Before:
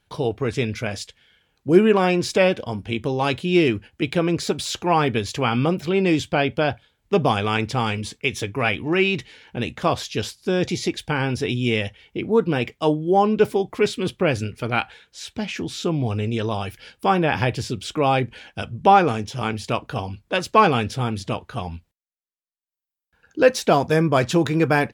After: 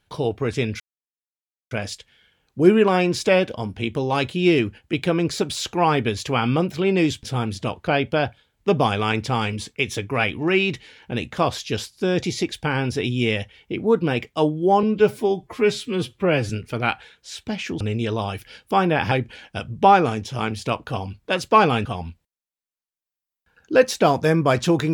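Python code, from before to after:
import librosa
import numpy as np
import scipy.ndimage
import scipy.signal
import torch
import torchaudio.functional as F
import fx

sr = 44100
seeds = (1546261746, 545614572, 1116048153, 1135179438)

y = fx.edit(x, sr, fx.insert_silence(at_s=0.8, length_s=0.91),
    fx.stretch_span(start_s=13.28, length_s=1.11, factor=1.5),
    fx.cut(start_s=15.7, length_s=0.43),
    fx.cut(start_s=17.44, length_s=0.7),
    fx.move(start_s=20.88, length_s=0.64, to_s=6.32), tone=tone)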